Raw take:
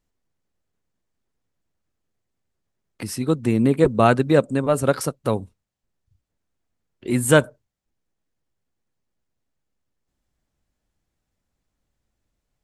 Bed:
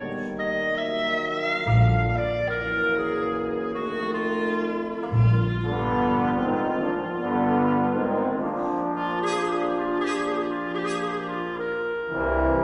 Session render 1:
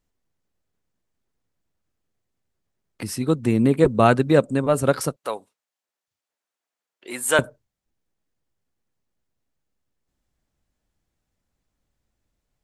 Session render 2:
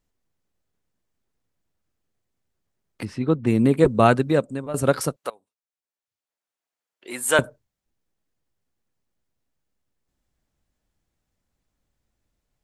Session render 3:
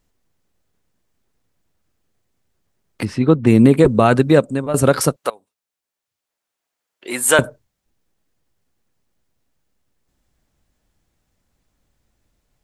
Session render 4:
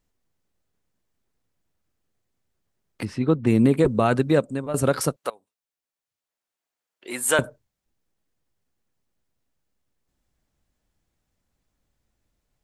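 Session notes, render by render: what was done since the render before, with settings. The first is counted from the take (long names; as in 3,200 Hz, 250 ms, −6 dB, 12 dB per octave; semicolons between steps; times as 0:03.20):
0:05.16–0:07.39: high-pass filter 650 Hz
0:03.05–0:03.47: low-pass filter 2,800 Hz; 0:04.06–0:04.74: fade out linear, to −13.5 dB; 0:05.30–0:07.33: fade in, from −23 dB
boost into a limiter +8.5 dB
level −7 dB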